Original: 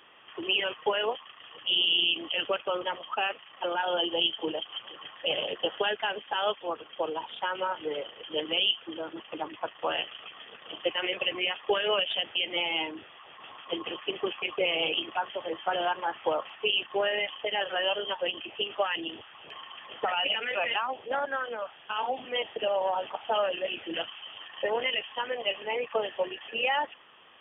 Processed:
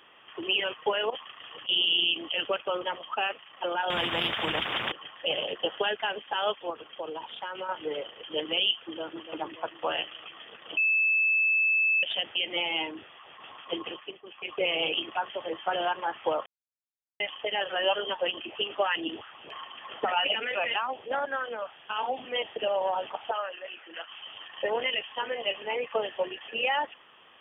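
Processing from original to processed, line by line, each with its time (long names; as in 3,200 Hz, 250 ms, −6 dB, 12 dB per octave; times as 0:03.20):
0:01.10–0:01.69: compressor whose output falls as the input rises −36 dBFS, ratio −0.5
0:03.90–0:04.92: every bin compressed towards the loudest bin 4 to 1
0:06.70–0:07.69: downward compressor 2.5 to 1, threshold −34 dBFS
0:08.71–0:09.23: delay throw 290 ms, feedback 55%, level −9.5 dB
0:10.77–0:12.03: beep over 2,620 Hz −21 dBFS
0:13.81–0:14.65: duck −21.5 dB, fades 0.42 s
0:16.46–0:17.20: silence
0:17.81–0:20.48: auto-filter bell 3.1 Hz 240–1,500 Hz +8 dB
0:23.31–0:24.10: resonant band-pass 1,400 Hz, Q 1.4
0:24.71–0:25.24: delay throw 500 ms, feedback 30%, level −17 dB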